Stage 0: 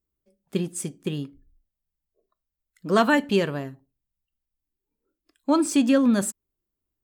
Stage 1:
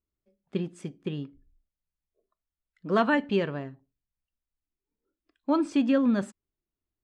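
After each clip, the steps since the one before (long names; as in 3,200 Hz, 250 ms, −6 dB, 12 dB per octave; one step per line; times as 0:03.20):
low-pass filter 3,200 Hz 12 dB per octave
level −4 dB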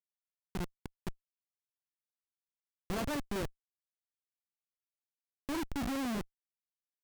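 high shelf with overshoot 3,700 Hz +8 dB, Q 3
comparator with hysteresis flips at −25.5 dBFS
level −3.5 dB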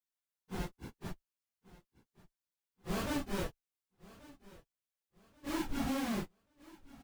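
random phases in long frames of 100 ms
repeating echo 1,133 ms, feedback 33%, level −20.5 dB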